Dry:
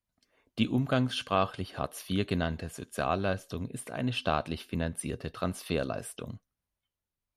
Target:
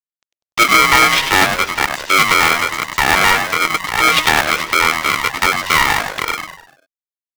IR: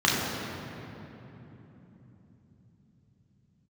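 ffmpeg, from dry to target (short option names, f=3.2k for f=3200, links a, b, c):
-filter_complex "[0:a]afftfilt=real='real(if(between(b,1,1012),(2*floor((b-1)/92)+1)*92-b,b),0)':imag='imag(if(between(b,1,1012),(2*floor((b-1)/92)+1)*92-b,b),0)*if(between(b,1,1012),-1,1)':win_size=2048:overlap=0.75,highpass=f=810:w=0.5412,highpass=f=810:w=1.3066,highshelf=f=2.1k:g=2,asplit=2[a][b];[b]acompressor=threshold=-43dB:ratio=6,volume=-2dB[c];[a][c]amix=inputs=2:normalize=0,aeval=exprs='0.355*(cos(1*acos(clip(val(0)/0.355,-1,1)))-cos(1*PI/2))+0.00891*(cos(2*acos(clip(val(0)/0.355,-1,1)))-cos(2*PI/2))+0.0224*(cos(3*acos(clip(val(0)/0.355,-1,1)))-cos(3*PI/2))+0.00355*(cos(4*acos(clip(val(0)/0.355,-1,1)))-cos(4*PI/2))+0.00355*(cos(5*acos(clip(val(0)/0.355,-1,1)))-cos(5*PI/2))':c=same,aresample=16000,aeval=exprs='sgn(val(0))*max(abs(val(0))-0.00355,0)':c=same,aresample=44100,asplit=2[d][e];[e]highpass=f=720:p=1,volume=12dB,asoftclip=type=tanh:threshold=-9dB[f];[d][f]amix=inputs=2:normalize=0,lowpass=f=4.3k:p=1,volume=-6dB,aeval=exprs='0.335*sin(PI/2*1.78*val(0)/0.335)':c=same,asplit=6[g][h][i][j][k][l];[h]adelay=98,afreqshift=-150,volume=-6.5dB[m];[i]adelay=196,afreqshift=-300,volume=-13.8dB[n];[j]adelay=294,afreqshift=-450,volume=-21.2dB[o];[k]adelay=392,afreqshift=-600,volume=-28.5dB[p];[l]adelay=490,afreqshift=-750,volume=-35.8dB[q];[g][m][n][o][p][q]amix=inputs=6:normalize=0,aeval=exprs='val(0)*sgn(sin(2*PI*470*n/s))':c=same,volume=4dB"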